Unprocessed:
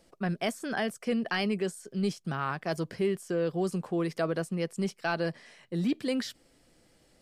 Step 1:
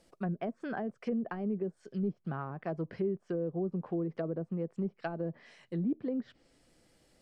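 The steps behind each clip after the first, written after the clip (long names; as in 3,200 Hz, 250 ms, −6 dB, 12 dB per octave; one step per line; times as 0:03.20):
treble cut that deepens with the level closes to 490 Hz, closed at −26 dBFS
level −3 dB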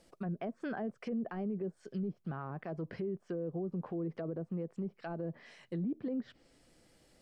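brickwall limiter −31 dBFS, peak gain reduction 9.5 dB
level +1 dB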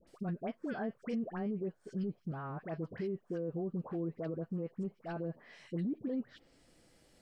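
all-pass dispersion highs, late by 74 ms, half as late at 1,200 Hz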